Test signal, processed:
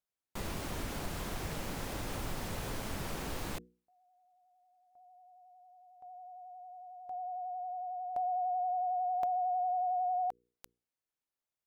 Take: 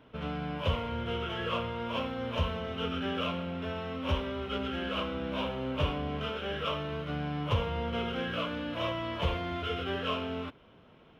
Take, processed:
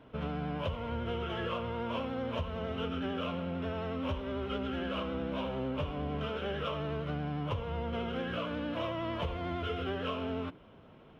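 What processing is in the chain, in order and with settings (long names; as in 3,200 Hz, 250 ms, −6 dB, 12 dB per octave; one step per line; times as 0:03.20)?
tilt shelving filter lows +3.5 dB, about 1,400 Hz
mains-hum notches 60/120/180/240/300/360/420/480 Hz
downward compressor 12 to 1, threshold −31 dBFS
pitch vibrato 11 Hz 33 cents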